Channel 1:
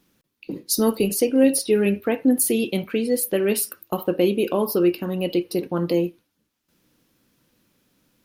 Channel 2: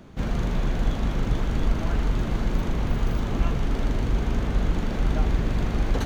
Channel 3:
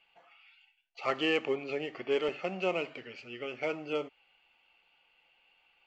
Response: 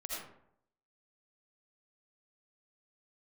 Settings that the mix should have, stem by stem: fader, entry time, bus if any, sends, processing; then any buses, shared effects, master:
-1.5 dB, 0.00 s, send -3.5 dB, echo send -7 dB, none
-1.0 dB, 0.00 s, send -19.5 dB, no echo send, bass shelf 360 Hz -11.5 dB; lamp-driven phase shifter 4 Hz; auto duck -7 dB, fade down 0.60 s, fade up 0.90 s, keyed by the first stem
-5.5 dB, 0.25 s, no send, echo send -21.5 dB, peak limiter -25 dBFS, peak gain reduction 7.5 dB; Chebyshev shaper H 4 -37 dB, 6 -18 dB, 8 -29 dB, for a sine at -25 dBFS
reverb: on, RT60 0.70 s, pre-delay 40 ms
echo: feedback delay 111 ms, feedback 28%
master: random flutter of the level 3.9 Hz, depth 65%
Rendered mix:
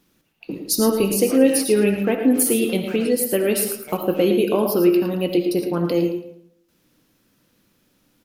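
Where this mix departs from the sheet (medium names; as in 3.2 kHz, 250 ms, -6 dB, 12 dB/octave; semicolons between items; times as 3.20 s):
stem 2: muted; stem 3: missing peak limiter -25 dBFS, peak gain reduction 7.5 dB; master: missing random flutter of the level 3.9 Hz, depth 65%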